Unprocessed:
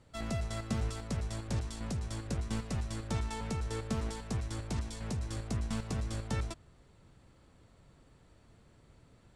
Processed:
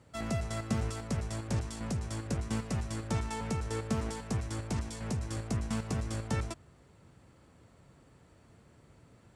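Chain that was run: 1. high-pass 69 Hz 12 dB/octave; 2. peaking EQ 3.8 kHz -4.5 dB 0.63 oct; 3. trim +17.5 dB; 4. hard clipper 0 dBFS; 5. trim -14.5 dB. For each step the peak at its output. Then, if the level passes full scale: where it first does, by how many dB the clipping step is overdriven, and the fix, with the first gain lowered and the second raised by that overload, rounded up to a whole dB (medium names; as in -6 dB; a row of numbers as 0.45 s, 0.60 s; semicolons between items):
-22.5 dBFS, -22.5 dBFS, -5.0 dBFS, -5.0 dBFS, -19.5 dBFS; nothing clips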